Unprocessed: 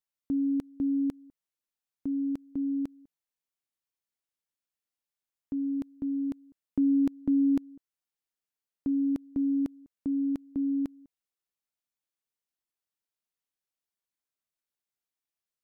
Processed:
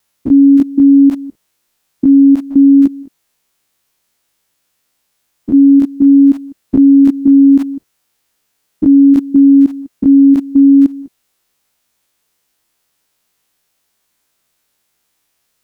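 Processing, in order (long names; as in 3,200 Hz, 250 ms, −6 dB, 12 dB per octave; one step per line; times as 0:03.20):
spectrum averaged block by block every 50 ms
pitch vibrato 0.37 Hz 5.6 cents
boost into a limiter +28.5 dB
level −1 dB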